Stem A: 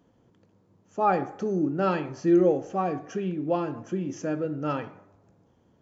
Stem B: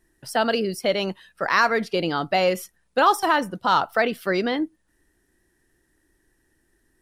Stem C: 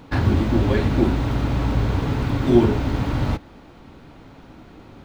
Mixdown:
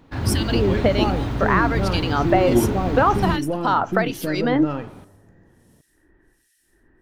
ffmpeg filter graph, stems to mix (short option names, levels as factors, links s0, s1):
-filter_complex "[0:a]aeval=exprs='if(lt(val(0),0),0.708*val(0),val(0))':c=same,lowshelf=f=410:g=7.5,alimiter=limit=0.141:level=0:latency=1:release=356,volume=0.631[s0];[1:a]acompressor=threshold=0.0708:ratio=6,acrossover=split=2200[s1][s2];[s1]aeval=exprs='val(0)*(1-1/2+1/2*cos(2*PI*1.3*n/s))':c=same[s3];[s2]aeval=exprs='val(0)*(1-1/2-1/2*cos(2*PI*1.3*n/s))':c=same[s4];[s3][s4]amix=inputs=2:normalize=0,volume=1.41[s5];[2:a]volume=0.335[s6];[s0][s5][s6]amix=inputs=3:normalize=0,dynaudnorm=f=140:g=3:m=2.24"